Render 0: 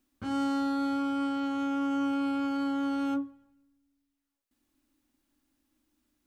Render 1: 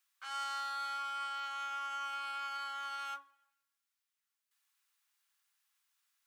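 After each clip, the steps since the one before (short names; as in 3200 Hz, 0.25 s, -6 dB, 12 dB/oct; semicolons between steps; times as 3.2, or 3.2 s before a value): HPF 1100 Hz 24 dB/oct; gain +1 dB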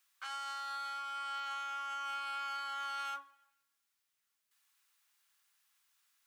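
limiter -38 dBFS, peak gain reduction 8.5 dB; gain +4.5 dB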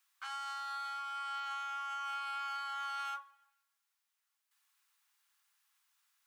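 ladder high-pass 650 Hz, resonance 30%; gain +5 dB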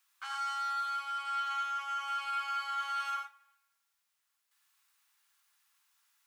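non-linear reverb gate 0.13 s rising, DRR 4 dB; gain +2 dB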